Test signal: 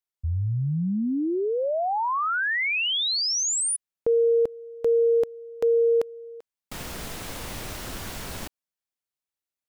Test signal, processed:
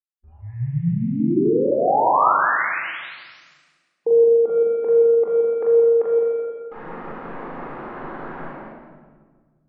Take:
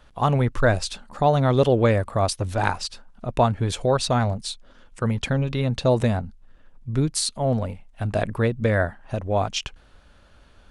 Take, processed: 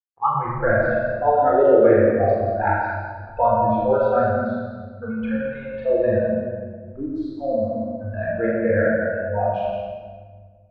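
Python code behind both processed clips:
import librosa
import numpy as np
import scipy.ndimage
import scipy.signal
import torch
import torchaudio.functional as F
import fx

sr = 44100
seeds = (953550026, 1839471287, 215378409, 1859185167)

p1 = fx.low_shelf(x, sr, hz=110.0, db=-5.5)
p2 = np.where(np.abs(p1) >= 10.0 ** (-40.5 / 20.0), p1, 0.0)
p3 = scipy.signal.sosfilt(scipy.signal.butter(4, 1400.0, 'lowpass', fs=sr, output='sos'), p2)
p4 = fx.tilt_eq(p3, sr, slope=2.0)
p5 = fx.doubler(p4, sr, ms=41.0, db=-4.0)
p6 = p5 + fx.echo_thinned(p5, sr, ms=171, feedback_pct=36, hz=180.0, wet_db=-6.0, dry=0)
p7 = fx.noise_reduce_blind(p6, sr, reduce_db=24)
y = fx.room_shoebox(p7, sr, seeds[0], volume_m3=1800.0, walls='mixed', distance_m=4.0)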